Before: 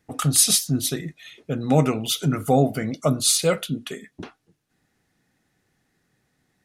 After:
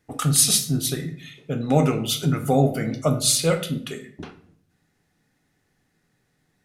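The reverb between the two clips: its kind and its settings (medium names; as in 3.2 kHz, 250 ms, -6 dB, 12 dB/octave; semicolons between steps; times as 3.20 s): simulated room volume 80 m³, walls mixed, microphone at 0.38 m; trim -1 dB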